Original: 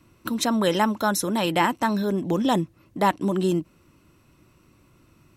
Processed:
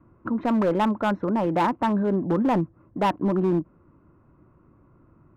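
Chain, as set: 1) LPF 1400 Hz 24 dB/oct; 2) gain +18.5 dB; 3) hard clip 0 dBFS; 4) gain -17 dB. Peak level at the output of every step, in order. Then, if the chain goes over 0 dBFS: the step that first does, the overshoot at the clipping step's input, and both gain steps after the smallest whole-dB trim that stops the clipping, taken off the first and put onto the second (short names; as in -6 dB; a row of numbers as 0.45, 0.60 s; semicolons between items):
-10.0, +8.5, 0.0, -17.0 dBFS; step 2, 8.5 dB; step 2 +9.5 dB, step 4 -8 dB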